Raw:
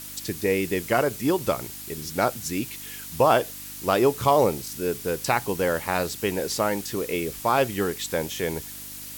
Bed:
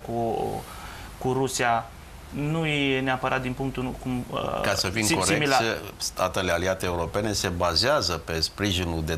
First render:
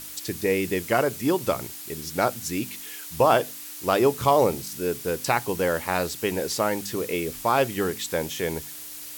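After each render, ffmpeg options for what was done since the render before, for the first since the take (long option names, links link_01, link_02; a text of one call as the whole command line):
ffmpeg -i in.wav -af "bandreject=frequency=50:width_type=h:width=4,bandreject=frequency=100:width_type=h:width=4,bandreject=frequency=150:width_type=h:width=4,bandreject=frequency=200:width_type=h:width=4,bandreject=frequency=250:width_type=h:width=4" out.wav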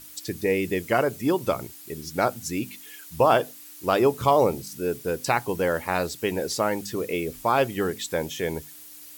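ffmpeg -i in.wav -af "afftdn=noise_reduction=8:noise_floor=-39" out.wav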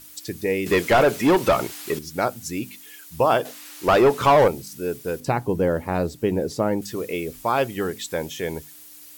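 ffmpeg -i in.wav -filter_complex "[0:a]asettb=1/sr,asplit=3[link_01][link_02][link_03];[link_01]atrim=end=0.664[link_04];[link_02]atrim=start=0.66:end=1.99,asetpts=PTS-STARTPTS,afade=type=in:duration=0.004:curve=qsin,afade=type=out:start_time=1.326:duration=0.004:curve=qsin,asplit=2[link_05][link_06];[link_06]highpass=frequency=720:poles=1,volume=24dB,asoftclip=type=tanh:threshold=-8dB[link_07];[link_05][link_07]amix=inputs=2:normalize=0,lowpass=frequency=2700:poles=1,volume=-6dB[link_08];[link_03]atrim=start=1.986[link_09];[link_04][link_08]acrossfade=duration=0.004:curve1=hsin:curve2=qsin[link_10];[link_10][link_09]acrossfade=duration=0.004:curve1=qsin:curve2=hsin,asettb=1/sr,asplit=3[link_11][link_12][link_13];[link_11]atrim=end=3.454[link_14];[link_12]atrim=start=3.45:end=4.48,asetpts=PTS-STARTPTS,afade=type=in:duration=0.004:curve=qsin,afade=type=out:start_time=1.026:duration=0.004:curve=qsin,asplit=2[link_15][link_16];[link_16]highpass=frequency=720:poles=1,volume=20dB,asoftclip=type=tanh:threshold=-7dB[link_17];[link_15][link_17]amix=inputs=2:normalize=0,lowpass=frequency=2500:poles=1,volume=-6dB[link_18];[link_13]atrim=start=4.476[link_19];[link_14][link_18]acrossfade=duration=0.004:curve1=hsin:curve2=qsin[link_20];[link_20][link_19]acrossfade=duration=0.004:curve1=qsin:curve2=hsin,asettb=1/sr,asplit=3[link_21][link_22][link_23];[link_21]atrim=end=5.204[link_24];[link_22]atrim=start=5.2:end=6.82,asetpts=PTS-STARTPTS,afade=type=in:duration=0.004:curve=qsin,afade=type=out:start_time=1.616:duration=0.004:curve=qsin,tiltshelf=frequency=750:gain=8[link_25];[link_23]atrim=start=6.816[link_26];[link_24][link_25]acrossfade=duration=0.004:curve1=hsin:curve2=qsin[link_27];[link_27][link_26]acrossfade=duration=0.004:curve1=qsin:curve2=hsin" out.wav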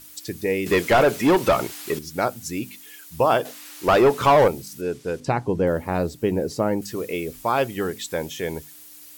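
ffmpeg -i in.wav -filter_complex "[0:a]asettb=1/sr,asplit=3[link_01][link_02][link_03];[link_01]atrim=end=4.814[link_04];[link_02]atrim=start=4.81:end=5.67,asetpts=PTS-STARTPTS,afade=type=in:duration=0.004:curve=qsin,afade=type=out:start_time=0.856:duration=0.004:curve=qsin,lowpass=7300[link_05];[link_03]atrim=start=5.666[link_06];[link_04][link_05]acrossfade=duration=0.004:curve1=hsin:curve2=qsin[link_07];[link_07][link_06]acrossfade=duration=0.004:curve1=qsin:curve2=hsin,asettb=1/sr,asplit=3[link_08][link_09][link_10];[link_08]atrim=end=6.294[link_11];[link_09]atrim=start=6.29:end=6.95,asetpts=PTS-STARTPTS,afade=type=in:duration=0.004:curve=qsin,afade=type=out:start_time=0.656:duration=0.004:curve=qsin,bandreject=frequency=3500:width=12[link_12];[link_10]atrim=start=6.946[link_13];[link_11][link_12]acrossfade=duration=0.004:curve1=hsin:curve2=qsin[link_14];[link_14][link_13]acrossfade=duration=0.004:curve1=qsin:curve2=hsin" out.wav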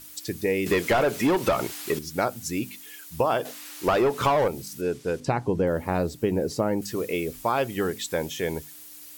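ffmpeg -i in.wav -af "acompressor=threshold=-19dB:ratio=6" out.wav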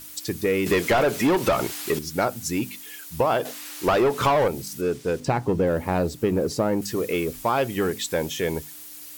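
ffmpeg -i in.wav -filter_complex "[0:a]asplit=2[link_01][link_02];[link_02]asoftclip=type=hard:threshold=-26dB,volume=-6dB[link_03];[link_01][link_03]amix=inputs=2:normalize=0,acrusher=bits=8:mix=0:aa=0.000001" out.wav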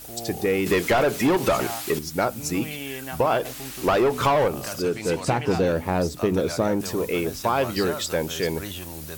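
ffmpeg -i in.wav -i bed.wav -filter_complex "[1:a]volume=-10.5dB[link_01];[0:a][link_01]amix=inputs=2:normalize=0" out.wav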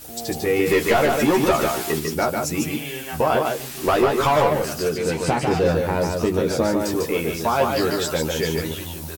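ffmpeg -i in.wav -filter_complex "[0:a]asplit=2[link_01][link_02];[link_02]adelay=13,volume=-4dB[link_03];[link_01][link_03]amix=inputs=2:normalize=0,aecho=1:1:148:0.631" out.wav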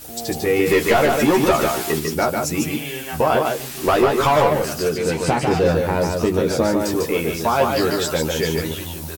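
ffmpeg -i in.wav -af "volume=2dB" out.wav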